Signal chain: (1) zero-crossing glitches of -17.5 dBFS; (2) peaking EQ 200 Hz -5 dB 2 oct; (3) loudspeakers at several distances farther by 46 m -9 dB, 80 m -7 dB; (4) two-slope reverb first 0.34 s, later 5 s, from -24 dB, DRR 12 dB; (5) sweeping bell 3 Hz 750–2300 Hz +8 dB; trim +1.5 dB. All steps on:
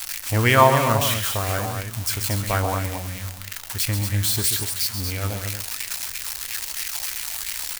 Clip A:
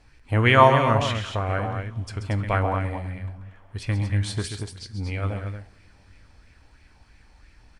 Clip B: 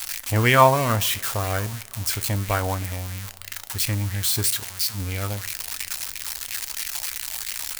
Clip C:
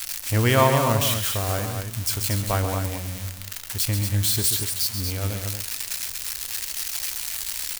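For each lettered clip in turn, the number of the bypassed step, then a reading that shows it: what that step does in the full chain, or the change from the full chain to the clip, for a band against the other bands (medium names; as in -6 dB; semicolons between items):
1, distortion -5 dB; 3, momentary loudness spread change +2 LU; 5, 1 kHz band -4.0 dB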